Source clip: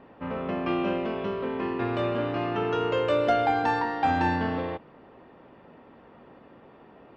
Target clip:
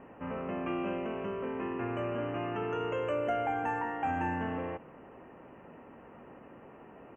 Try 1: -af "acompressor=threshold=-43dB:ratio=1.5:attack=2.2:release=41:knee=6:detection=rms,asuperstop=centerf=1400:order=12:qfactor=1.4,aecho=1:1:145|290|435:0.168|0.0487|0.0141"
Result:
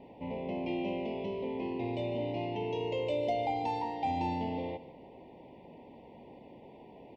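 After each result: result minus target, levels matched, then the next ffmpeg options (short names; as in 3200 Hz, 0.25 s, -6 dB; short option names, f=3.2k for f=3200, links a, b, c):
echo-to-direct +9 dB; 4000 Hz band +4.5 dB
-af "acompressor=threshold=-43dB:ratio=1.5:attack=2.2:release=41:knee=6:detection=rms,asuperstop=centerf=1400:order=12:qfactor=1.4,aecho=1:1:145|290:0.0596|0.0173"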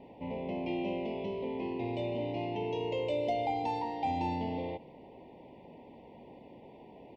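4000 Hz band +4.5 dB
-af "acompressor=threshold=-43dB:ratio=1.5:attack=2.2:release=41:knee=6:detection=rms,asuperstop=centerf=4300:order=12:qfactor=1.4,aecho=1:1:145|290:0.0596|0.0173"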